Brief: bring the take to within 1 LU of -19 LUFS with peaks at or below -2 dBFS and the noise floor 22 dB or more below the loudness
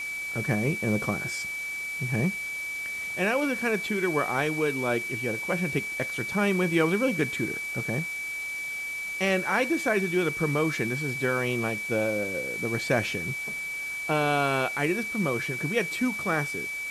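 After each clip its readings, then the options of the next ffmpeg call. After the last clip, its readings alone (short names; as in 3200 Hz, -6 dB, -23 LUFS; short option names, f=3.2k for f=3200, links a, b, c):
steady tone 2300 Hz; tone level -31 dBFS; noise floor -34 dBFS; noise floor target -49 dBFS; loudness -27.0 LUFS; peak -10.5 dBFS; loudness target -19.0 LUFS
-> -af "bandreject=f=2.3k:w=30"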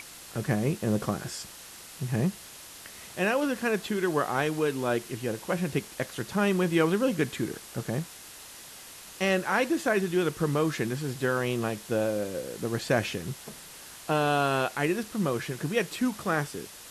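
steady tone none; noise floor -47 dBFS; noise floor target -51 dBFS
-> -af "afftdn=nr=6:nf=-47"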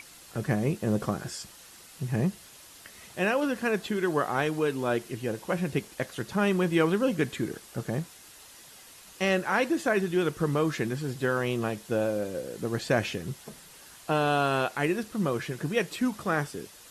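noise floor -51 dBFS; loudness -29.0 LUFS; peak -11.0 dBFS; loudness target -19.0 LUFS
-> -af "volume=10dB,alimiter=limit=-2dB:level=0:latency=1"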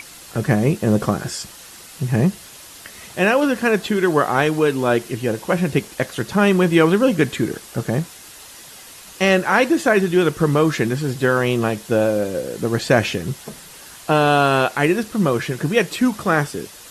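loudness -19.0 LUFS; peak -2.0 dBFS; noise floor -41 dBFS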